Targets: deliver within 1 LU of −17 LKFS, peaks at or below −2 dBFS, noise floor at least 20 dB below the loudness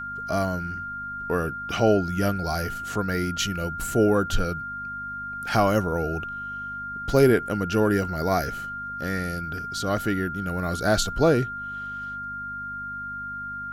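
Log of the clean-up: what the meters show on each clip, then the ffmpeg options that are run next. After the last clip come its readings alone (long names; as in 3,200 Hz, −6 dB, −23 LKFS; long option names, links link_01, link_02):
mains hum 50 Hz; hum harmonics up to 250 Hz; level of the hum −46 dBFS; interfering tone 1,400 Hz; level of the tone −31 dBFS; integrated loudness −26.0 LKFS; sample peak −7.5 dBFS; target loudness −17.0 LKFS
→ -af "bandreject=frequency=50:width_type=h:width=4,bandreject=frequency=100:width_type=h:width=4,bandreject=frequency=150:width_type=h:width=4,bandreject=frequency=200:width_type=h:width=4,bandreject=frequency=250:width_type=h:width=4"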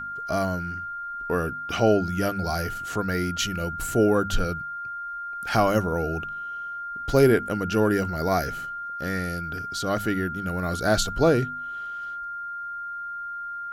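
mains hum none found; interfering tone 1,400 Hz; level of the tone −31 dBFS
→ -af "bandreject=frequency=1400:width=30"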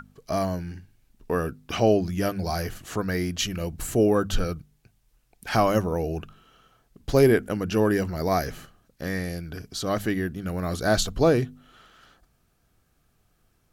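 interfering tone none found; integrated loudness −25.5 LKFS; sample peak −8.0 dBFS; target loudness −17.0 LKFS
→ -af "volume=8.5dB,alimiter=limit=-2dB:level=0:latency=1"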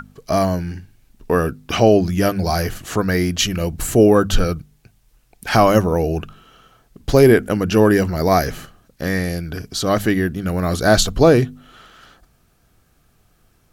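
integrated loudness −17.5 LKFS; sample peak −2.0 dBFS; background noise floor −59 dBFS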